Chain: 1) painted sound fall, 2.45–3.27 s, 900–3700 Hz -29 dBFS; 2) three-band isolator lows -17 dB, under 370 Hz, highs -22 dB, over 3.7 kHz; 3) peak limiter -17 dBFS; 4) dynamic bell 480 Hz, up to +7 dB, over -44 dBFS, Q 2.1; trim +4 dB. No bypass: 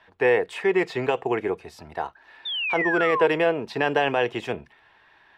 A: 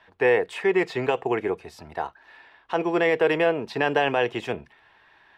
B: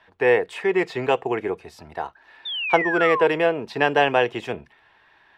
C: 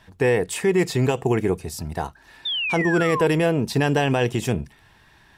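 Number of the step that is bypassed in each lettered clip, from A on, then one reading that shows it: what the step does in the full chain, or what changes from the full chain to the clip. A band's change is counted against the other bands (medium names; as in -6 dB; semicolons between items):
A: 1, 4 kHz band -4.5 dB; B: 3, crest factor change +5.5 dB; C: 2, 125 Hz band +13.5 dB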